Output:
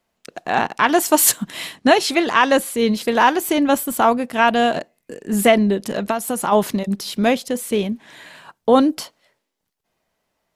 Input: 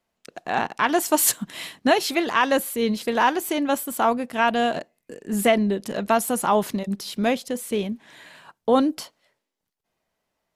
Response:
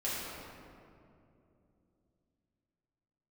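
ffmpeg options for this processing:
-filter_complex "[0:a]asettb=1/sr,asplit=3[a][b][c];[a]atrim=end=1.764[d];[b]atrim=start=1.76:end=2.79,asetpts=PTS-STARTPTS,afade=t=in:d=0.004:c=qsin,afade=t=out:st=1.026:d=0.004:c=qsin,lowpass=f=11k:w=0.5412,lowpass=f=11k:w=1.3066[e];[c]atrim=start=2.786[f];[d][e]acrossfade=d=0.004:c1=hsin:c2=qsin[g];[g][f]acrossfade=d=0.004:c1=qsin:c2=hsin,asettb=1/sr,asplit=3[h][i][j];[h]atrim=end=3.484[k];[i]atrim=start=3.48:end=4.01,asetpts=PTS-STARTPTS,afade=t=in:d=0.004:c=qsin,afade=t=out:st=0.526:d=0.004:c=qsin,lowshelf=f=140:g=10[l];[j]atrim=start=4.006[m];[k][l]acrossfade=d=0.004:c1=hsin:c2=qsin[n];[n][m]acrossfade=d=0.004:c1=qsin:c2=hsin,asplit=3[o][p][q];[o]afade=t=out:st=5.93:d=0.02[r];[p]acompressor=threshold=-23dB:ratio=6,afade=t=in:st=5.93:d=0.02,afade=t=out:st=6.51:d=0.02[s];[q]afade=t=in:st=6.51:d=0.02[t];[r][s][t]amix=inputs=3:normalize=0,volume=5dB"

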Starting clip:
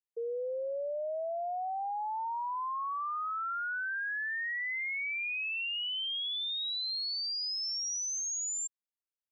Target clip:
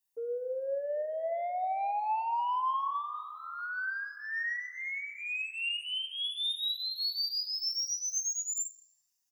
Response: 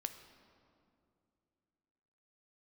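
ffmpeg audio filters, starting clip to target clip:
-filter_complex "[0:a]highshelf=f=5.7k:g=12,aecho=1:1:1.1:0.57,acrossover=split=860|4400[a][b][c];[a]acompressor=threshold=-36dB:ratio=4[d];[b]acompressor=threshold=-42dB:ratio=4[e];[c]acompressor=threshold=-40dB:ratio=4[f];[d][e][f]amix=inputs=3:normalize=0,asoftclip=type=tanh:threshold=-32dB[g];[1:a]atrim=start_sample=2205[h];[g][h]afir=irnorm=-1:irlink=0,asplit=2[i][j];[j]adelay=4.8,afreqshift=1.3[k];[i][k]amix=inputs=2:normalize=1,volume=8.5dB"

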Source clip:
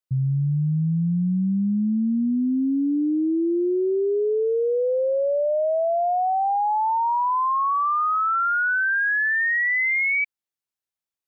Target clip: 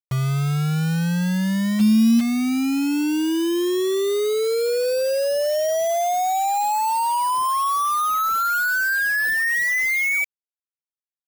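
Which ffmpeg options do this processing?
-filter_complex "[0:a]asplit=3[a][b][c];[a]afade=t=out:st=1.79:d=0.02[d];[b]acontrast=85,afade=t=in:st=1.79:d=0.02,afade=t=out:st=2.19:d=0.02[e];[c]afade=t=in:st=2.19:d=0.02[f];[d][e][f]amix=inputs=3:normalize=0,acrusher=bits=4:mix=0:aa=0.000001"

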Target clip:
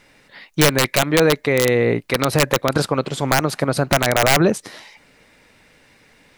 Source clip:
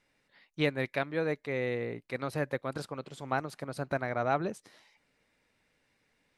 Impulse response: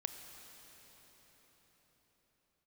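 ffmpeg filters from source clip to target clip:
-af "aeval=exprs='(mod(11.2*val(0)+1,2)-1)/11.2':c=same,alimiter=level_in=25.5dB:limit=-1dB:release=50:level=0:latency=1,volume=-5dB"

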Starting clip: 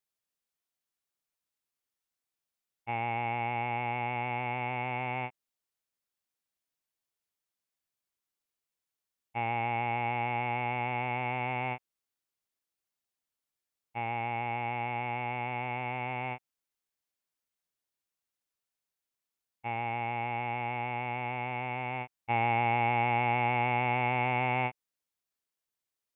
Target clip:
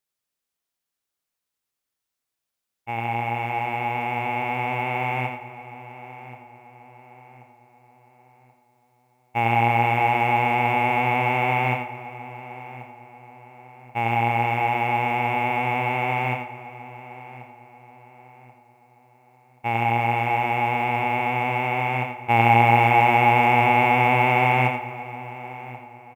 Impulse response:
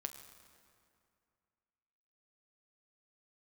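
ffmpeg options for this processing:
-filter_complex "[0:a]asplit=2[a][b];[b]adelay=1082,lowpass=f=2.5k:p=1,volume=-16dB,asplit=2[c][d];[d]adelay=1082,lowpass=f=2.5k:p=1,volume=0.42,asplit=2[e][f];[f]adelay=1082,lowpass=f=2.5k:p=1,volume=0.42,asplit=2[g][h];[h]adelay=1082,lowpass=f=2.5k:p=1,volume=0.42[i];[a][c][e][g][i]amix=inputs=5:normalize=0,acrusher=bits=9:mode=log:mix=0:aa=0.000001,dynaudnorm=f=470:g=21:m=7dB,asplit=2[j][k];[1:a]atrim=start_sample=2205,adelay=86[l];[k][l]afir=irnorm=-1:irlink=0,volume=-3.5dB[m];[j][m]amix=inputs=2:normalize=0,volume=3.5dB"

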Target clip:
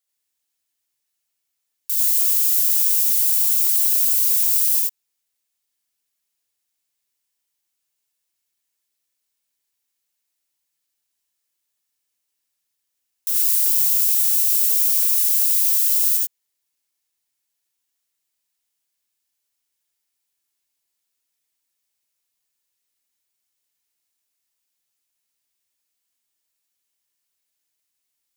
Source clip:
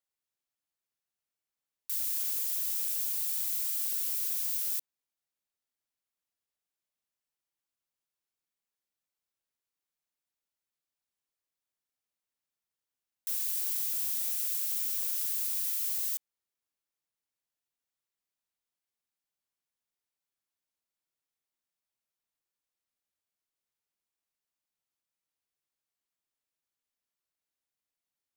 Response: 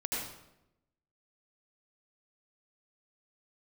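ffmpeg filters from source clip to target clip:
-filter_complex "[0:a]highshelf=f=2.3k:g=11.5[a];[1:a]atrim=start_sample=2205,atrim=end_sample=4410[b];[a][b]afir=irnorm=-1:irlink=0,volume=1.5dB"

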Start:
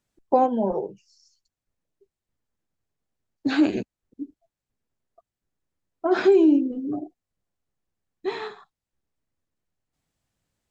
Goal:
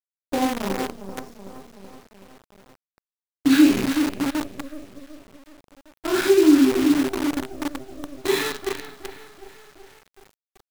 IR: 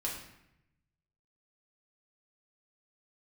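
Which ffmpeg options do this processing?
-filter_complex "[0:a]asplit=2[a][b];[b]adelay=377,lowpass=f=3.9k:p=1,volume=-8dB,asplit=2[c][d];[d]adelay=377,lowpass=f=3.9k:p=1,volume=0.5,asplit=2[e][f];[f]adelay=377,lowpass=f=3.9k:p=1,volume=0.5,asplit=2[g][h];[h]adelay=377,lowpass=f=3.9k:p=1,volume=0.5,asplit=2[i][j];[j]adelay=377,lowpass=f=3.9k:p=1,volume=0.5,asplit=2[k][l];[l]adelay=377,lowpass=f=3.9k:p=1,volume=0.5[m];[a][c][e][g][i][k][m]amix=inputs=7:normalize=0[n];[1:a]atrim=start_sample=2205,atrim=end_sample=3528,asetrate=38808,aresample=44100[o];[n][o]afir=irnorm=-1:irlink=0,dynaudnorm=f=270:g=9:m=12.5dB,equalizer=f=690:w=0.97:g=-13,acrusher=bits=5:dc=4:mix=0:aa=0.000001"

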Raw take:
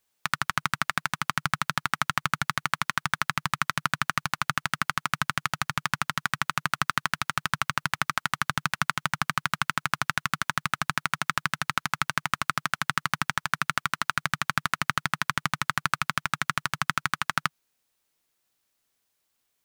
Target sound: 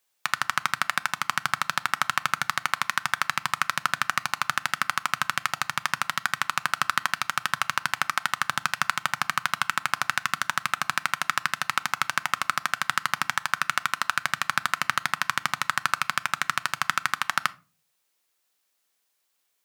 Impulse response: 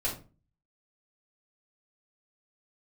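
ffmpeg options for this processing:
-filter_complex "[0:a]highpass=f=470:p=1,asplit=2[a][b];[1:a]atrim=start_sample=2205[c];[b][c]afir=irnorm=-1:irlink=0,volume=-19dB[d];[a][d]amix=inputs=2:normalize=0,volume=1.5dB"

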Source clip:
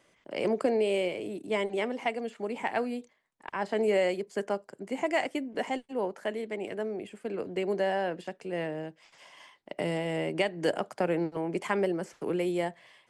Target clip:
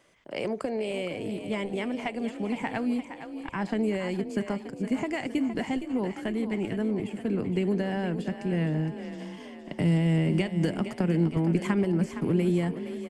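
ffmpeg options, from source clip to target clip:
-filter_complex "[0:a]acompressor=threshold=-28dB:ratio=6,asplit=8[a][b][c][d][e][f][g][h];[b]adelay=464,afreqshift=31,volume=-10dB[i];[c]adelay=928,afreqshift=62,volume=-14.7dB[j];[d]adelay=1392,afreqshift=93,volume=-19.5dB[k];[e]adelay=1856,afreqshift=124,volume=-24.2dB[l];[f]adelay=2320,afreqshift=155,volume=-28.9dB[m];[g]adelay=2784,afreqshift=186,volume=-33.7dB[n];[h]adelay=3248,afreqshift=217,volume=-38.4dB[o];[a][i][j][k][l][m][n][o]amix=inputs=8:normalize=0,asubboost=boost=11:cutoff=170,volume=2dB"

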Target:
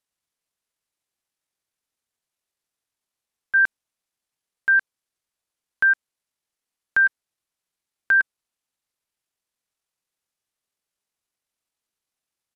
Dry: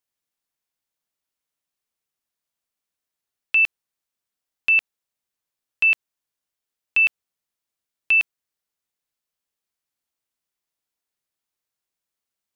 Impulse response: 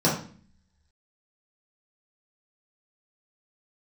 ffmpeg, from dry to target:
-af "asetrate=26222,aresample=44100,atempo=1.68179"

